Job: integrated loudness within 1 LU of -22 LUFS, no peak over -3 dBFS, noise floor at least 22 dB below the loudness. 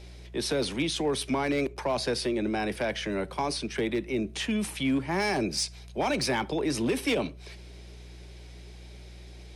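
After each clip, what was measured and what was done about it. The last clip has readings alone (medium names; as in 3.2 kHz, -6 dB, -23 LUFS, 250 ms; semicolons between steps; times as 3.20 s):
clipped samples 0.5%; clipping level -20.5 dBFS; hum 60 Hz; highest harmonic 180 Hz; hum level -44 dBFS; loudness -29.0 LUFS; peak level -20.5 dBFS; loudness target -22.0 LUFS
-> clip repair -20.5 dBFS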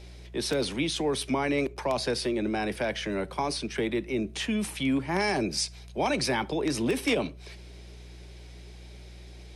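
clipped samples 0.0%; hum 60 Hz; highest harmonic 180 Hz; hum level -44 dBFS
-> de-hum 60 Hz, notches 3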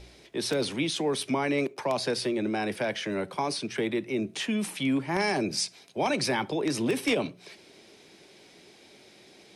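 hum not found; loudness -29.0 LUFS; peak level -11.5 dBFS; loudness target -22.0 LUFS
-> trim +7 dB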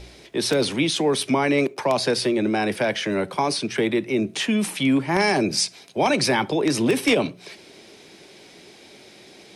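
loudness -22.0 LUFS; peak level -4.5 dBFS; noise floor -48 dBFS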